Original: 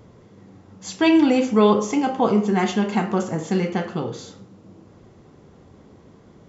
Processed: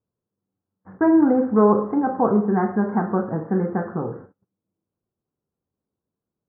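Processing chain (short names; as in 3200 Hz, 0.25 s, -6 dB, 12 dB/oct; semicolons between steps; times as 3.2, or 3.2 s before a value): gate -37 dBFS, range -37 dB; steep low-pass 1700 Hz 72 dB/oct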